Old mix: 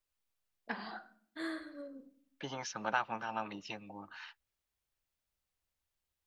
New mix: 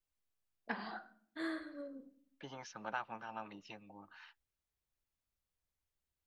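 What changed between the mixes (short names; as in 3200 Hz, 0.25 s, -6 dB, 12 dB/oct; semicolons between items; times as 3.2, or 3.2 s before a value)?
second voice -7.0 dB; master: add high shelf 4200 Hz -5.5 dB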